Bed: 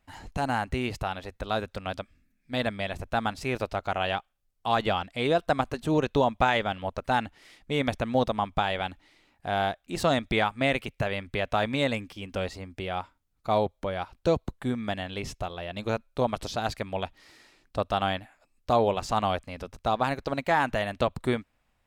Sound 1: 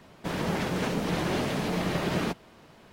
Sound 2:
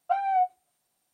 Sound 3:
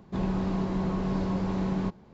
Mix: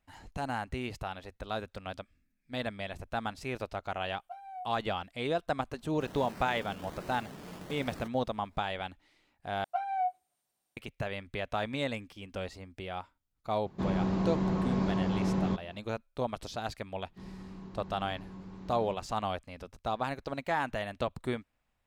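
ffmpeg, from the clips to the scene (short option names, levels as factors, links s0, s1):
-filter_complex "[2:a]asplit=2[s0][s1];[3:a]asplit=2[s2][s3];[0:a]volume=0.447[s4];[s0]equalizer=f=1500:w=0.32:g=-14[s5];[1:a]acrusher=samples=18:mix=1:aa=0.000001:lfo=1:lforange=10.8:lforate=1.3[s6];[s2]highpass=49[s7];[s3]equalizer=f=620:w=2.3:g=-8[s8];[s4]asplit=2[s9][s10];[s9]atrim=end=9.644[s11];[s1]atrim=end=1.13,asetpts=PTS-STARTPTS,volume=0.447[s12];[s10]atrim=start=10.766[s13];[s5]atrim=end=1.13,asetpts=PTS-STARTPTS,volume=0.376,afade=t=in:d=0.004:c=hsin,afade=t=out:st=1.126:d=0.004:c=hsin,adelay=4200[s14];[s6]atrim=end=2.92,asetpts=PTS-STARTPTS,volume=0.141,afade=t=in:d=0.004:c=hsin,afade=t=out:st=2.916:d=0.004:c=hsin,adelay=5750[s15];[s7]atrim=end=2.13,asetpts=PTS-STARTPTS,volume=0.891,afade=t=in:d=0.004:c=hsin,afade=t=out:st=2.126:d=0.004:c=hsin,adelay=13660[s16];[s8]atrim=end=2.13,asetpts=PTS-STARTPTS,volume=0.141,afade=t=in:d=0.004:c=hsin,afade=t=out:st=2.126:d=0.004:c=hsin,adelay=17040[s17];[s11][s12]acrossfade=d=0.004:c1=hsin:c2=hsin[s18];[s18][s13]acrossfade=d=0.004:c1=hsin:c2=hsin[s19];[s19][s14][s15][s16][s17]amix=inputs=5:normalize=0"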